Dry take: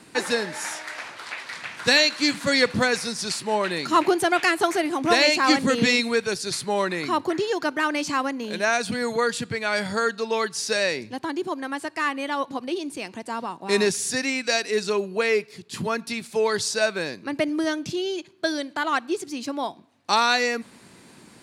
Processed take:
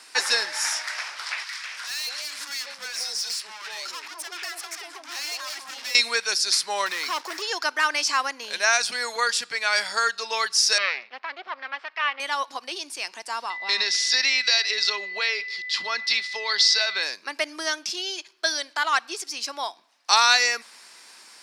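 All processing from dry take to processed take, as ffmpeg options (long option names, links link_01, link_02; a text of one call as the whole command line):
ffmpeg -i in.wav -filter_complex "[0:a]asettb=1/sr,asplit=3[link_01][link_02][link_03];[link_01]atrim=end=1.444[link_04];[link_02]atrim=start=1.44:end=5.95,asetpts=PTS-STARTPTS,afade=type=in:duration=0.004:curve=qsin,afade=type=out:start_time=4.506:duration=0.004:curve=qsin,aeval=exprs='(tanh(28.2*val(0)+0.25)-tanh(0.25))/28.2':channel_layout=same,acompressor=threshold=-33dB:ratio=6:attack=3.2:release=140:knee=1:detection=peak,acrossover=split=270|870[link_05][link_06][link_07];[link_05]adelay=40[link_08];[link_06]adelay=200[link_09];[link_08][link_09][link_07]amix=inputs=3:normalize=0,atrim=end_sample=198891[link_10];[link_03]atrim=start=5.946[link_11];[link_04][link_10]acrossfade=duration=0.004:curve1=hsin:curve2=qsin[link_12];[link_12][link_11]acrossfade=duration=0.004:curve1=qsin:curve2=hsin,asettb=1/sr,asplit=3[link_13][link_14][link_15];[link_13]atrim=end=6.864[link_16];[link_14]atrim=start=6.86:end=7.42,asetpts=PTS-STARTPTS,afade=type=in:duration=0.004:curve=qsin,afade=type=out:start_time=0.556:duration=0.004:curve=qsin,asoftclip=type=hard:threshold=-24dB,acrusher=bits=6:mix=0:aa=0.5[link_17];[link_15]atrim=start=7.416[link_18];[link_16][link_17]acrossfade=duration=0.004:curve1=hsin:curve2=qsin[link_19];[link_19][link_18]acrossfade=duration=0.004:curve1=qsin:curve2=hsin,asettb=1/sr,asplit=3[link_20][link_21][link_22];[link_20]atrim=end=10.784[link_23];[link_21]atrim=start=10.78:end=12.2,asetpts=PTS-STARTPTS,afade=type=in:duration=0.004:curve=qsin,afade=type=out:start_time=1.416:duration=0.004:curve=qsin,aeval=exprs='max(val(0),0)':channel_layout=same,highpass=frequency=170:width=0.5412,highpass=frequency=170:width=1.3066,equalizer=frequency=320:width_type=q:width=4:gain=-8,equalizer=frequency=1200:width_type=q:width=4:gain=3,equalizer=frequency=2200:width_type=q:width=4:gain=4,lowpass=frequency=3400:width=0.5412,lowpass=frequency=3400:width=1.3066[link_24];[link_22]atrim=start=12.196[link_25];[link_23][link_24]acrossfade=duration=0.004:curve1=hsin:curve2=qsin[link_26];[link_26][link_25]acrossfade=duration=0.004:curve1=qsin:curve2=hsin,asettb=1/sr,asplit=3[link_27][link_28][link_29];[link_27]atrim=end=13.504[link_30];[link_28]atrim=start=13.5:end=17.03,asetpts=PTS-STARTPTS,afade=type=in:duration=0.004:curve=qsin,afade=type=out:start_time=3.526:duration=0.004:curve=qsin,acompressor=threshold=-23dB:ratio=6:attack=3.2:release=140:knee=1:detection=peak,lowpass=frequency=4000:width_type=q:width=2.7,aeval=exprs='val(0)+0.0178*sin(2*PI*2000*n/s)':channel_layout=same[link_31];[link_29]atrim=start=17.026[link_32];[link_30][link_31]acrossfade=duration=0.004:curve1=hsin:curve2=qsin[link_33];[link_33][link_32]acrossfade=duration=0.004:curve1=qsin:curve2=hsin,highpass=980,equalizer=frequency=5300:width_type=o:width=0.34:gain=10.5,volume=3.5dB" out.wav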